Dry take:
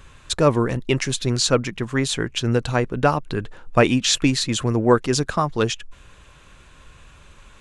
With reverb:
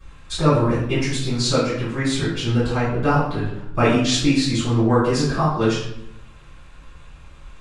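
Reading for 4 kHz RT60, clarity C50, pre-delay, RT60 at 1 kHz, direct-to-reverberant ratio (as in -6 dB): 0.55 s, 1.5 dB, 3 ms, 0.75 s, -15.5 dB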